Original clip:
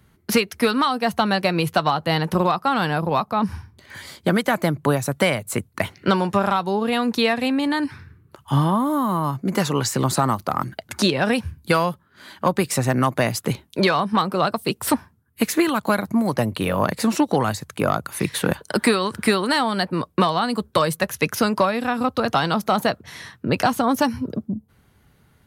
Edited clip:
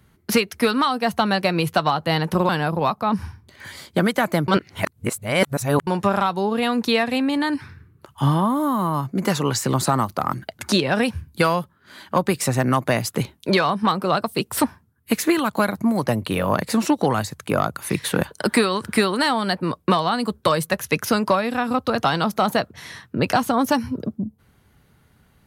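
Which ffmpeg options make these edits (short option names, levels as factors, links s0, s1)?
-filter_complex "[0:a]asplit=4[s0][s1][s2][s3];[s0]atrim=end=2.492[s4];[s1]atrim=start=2.788:end=4.782[s5];[s2]atrim=start=4.778:end=6.172,asetpts=PTS-STARTPTS,areverse[s6];[s3]atrim=start=6.168[s7];[s4][s5]acrossfade=d=0.004:c1=hsin:c2=hsin[s8];[s8][s6]acrossfade=d=0.004:c1=hsin:c2=hsin[s9];[s9][s7]acrossfade=d=0.004:c1=hsin:c2=hsin"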